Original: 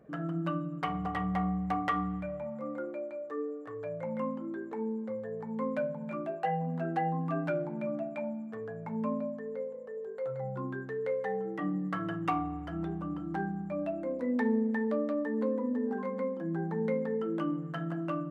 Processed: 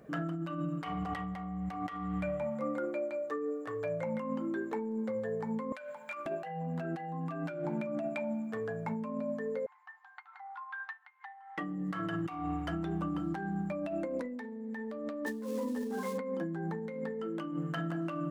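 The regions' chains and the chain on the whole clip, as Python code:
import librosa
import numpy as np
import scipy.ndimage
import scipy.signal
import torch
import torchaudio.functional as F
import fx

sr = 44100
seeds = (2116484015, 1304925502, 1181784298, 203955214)

y = fx.chain(x, sr, fx.highpass(hz=1100.0, slope=12),
    fx.over_compress(threshold_db=-47.0, ratio=-1.0), at=(5.72, 6.26))
y = fx.chain(y, sr, fx.over_compress(threshold_db=-38.0, ratio=-0.5),
    fx.brickwall_highpass(low_hz=720.0),
    fx.air_absorb(metres=260.0), at=(9.66, 11.58))
y = fx.chain(y, sr, fx.dead_time(dead_ms=0.07),
    fx.ensemble(), at=(15.26, 16.18))
y = fx.high_shelf(y, sr, hz=2300.0, db=9.5)
y = fx.over_compress(y, sr, threshold_db=-36.0, ratio=-1.0)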